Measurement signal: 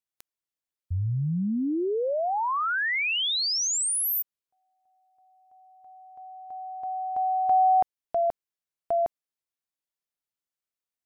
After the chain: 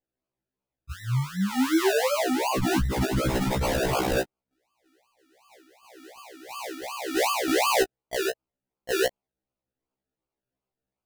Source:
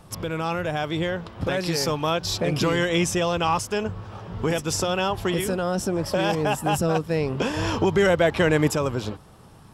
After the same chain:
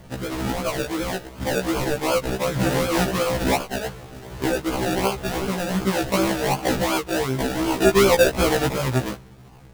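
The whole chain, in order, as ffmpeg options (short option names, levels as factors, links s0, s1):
-af "aphaser=in_gain=1:out_gain=1:delay=3.5:decay=0.34:speed=0.33:type=triangular,acrusher=samples=33:mix=1:aa=0.000001:lfo=1:lforange=19.8:lforate=2.7,afftfilt=real='re*1.73*eq(mod(b,3),0)':imag='im*1.73*eq(mod(b,3),0)':win_size=2048:overlap=0.75,volume=1.5"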